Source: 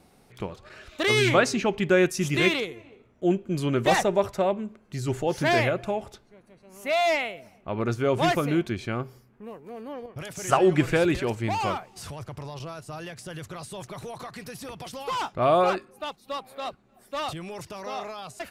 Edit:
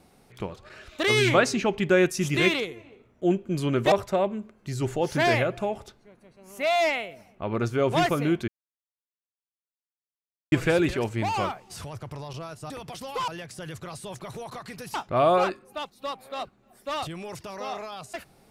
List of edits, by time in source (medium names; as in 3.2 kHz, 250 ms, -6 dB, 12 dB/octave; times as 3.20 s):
3.92–4.18 s: delete
8.74–10.78 s: mute
14.62–15.20 s: move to 12.96 s